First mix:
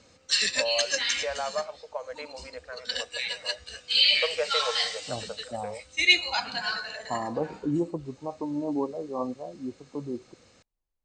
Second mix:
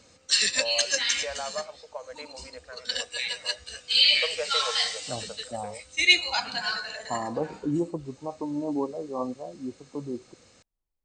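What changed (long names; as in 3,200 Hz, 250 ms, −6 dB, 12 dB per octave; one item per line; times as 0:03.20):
first voice −3.5 dB
master: remove high-frequency loss of the air 50 metres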